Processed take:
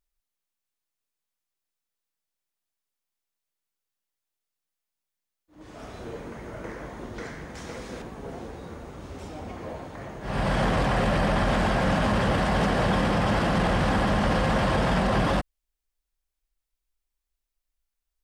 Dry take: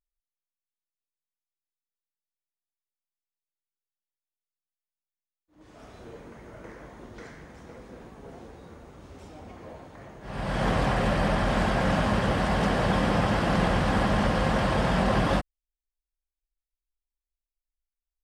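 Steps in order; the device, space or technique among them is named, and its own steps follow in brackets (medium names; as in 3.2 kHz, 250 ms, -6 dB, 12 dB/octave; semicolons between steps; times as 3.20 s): soft clipper into limiter (saturation -14 dBFS, distortion -24 dB; peak limiter -23 dBFS, peak gain reduction 7.5 dB); 7.55–8.02 s: peaking EQ 5.8 kHz +9.5 dB 2.9 oct; trim +7 dB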